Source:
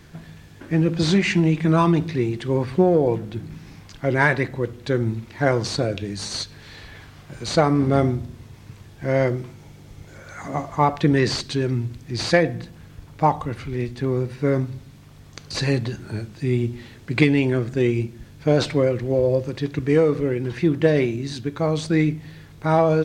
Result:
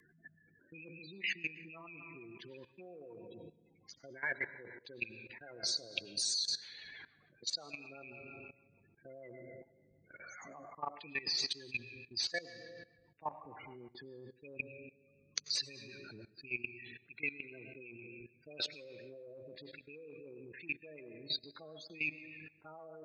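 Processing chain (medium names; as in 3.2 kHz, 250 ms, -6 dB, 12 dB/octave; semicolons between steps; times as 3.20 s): rattle on loud lows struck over -18 dBFS, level -11 dBFS; peaking EQ 77 Hz -8.5 dB 0.41 oct; spectral gate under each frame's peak -15 dB strong; reverberation RT60 1.3 s, pre-delay 65 ms, DRR 12.5 dB; rotary cabinet horn 6.7 Hz; reverse; compression 16:1, threshold -29 dBFS, peak gain reduction 18.5 dB; reverse; differentiator; level held to a coarse grid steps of 17 dB; trim +16.5 dB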